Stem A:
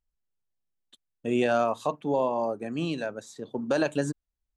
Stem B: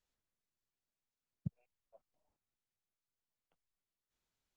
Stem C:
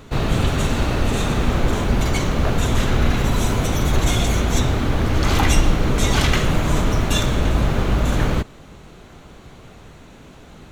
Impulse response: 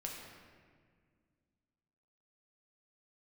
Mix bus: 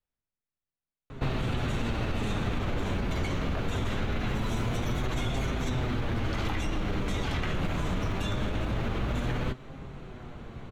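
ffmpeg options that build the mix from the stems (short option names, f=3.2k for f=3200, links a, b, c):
-filter_complex "[1:a]volume=-3.5dB[a];[2:a]alimiter=limit=-12.5dB:level=0:latency=1:release=42,flanger=delay=7.4:depth=3.8:regen=58:speed=0.23:shape=triangular,adelay=1100,volume=2dB[b];[a][b]amix=inputs=2:normalize=0,bass=f=250:g=4,treble=f=4k:g=-13,acrossover=split=210|2300[c][d][e];[c]acompressor=threshold=-30dB:ratio=4[f];[d]acompressor=threshold=-34dB:ratio=4[g];[e]acompressor=threshold=-40dB:ratio=4[h];[f][g][h]amix=inputs=3:normalize=0"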